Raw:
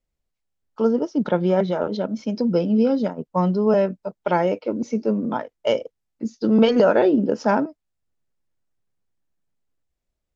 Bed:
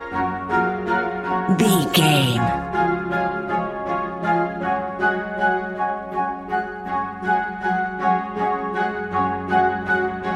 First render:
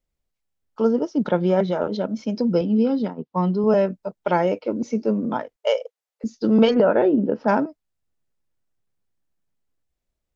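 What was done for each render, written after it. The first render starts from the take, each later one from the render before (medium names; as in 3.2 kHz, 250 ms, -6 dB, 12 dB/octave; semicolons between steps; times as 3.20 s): 2.61–3.64 s: cabinet simulation 120–4800 Hz, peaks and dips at 600 Hz -9 dB, 1.5 kHz -5 dB, 2.4 kHz -3 dB; 5.56–6.24 s: brick-wall FIR high-pass 420 Hz; 6.74–7.48 s: distance through air 410 m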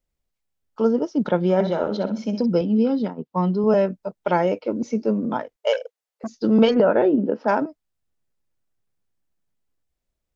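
1.54–2.46 s: flutter echo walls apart 10.9 m, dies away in 0.39 s; 5.73–6.41 s: transformer saturation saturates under 1 kHz; 7.16–7.60 s: high-pass 140 Hz -> 330 Hz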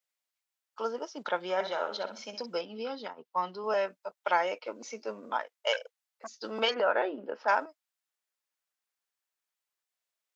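high-pass 1 kHz 12 dB/octave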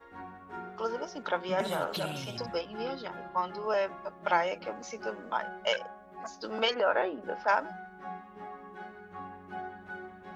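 add bed -22.5 dB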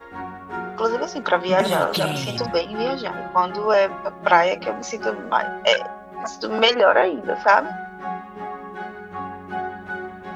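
trim +12 dB; peak limiter -3 dBFS, peak gain reduction 1 dB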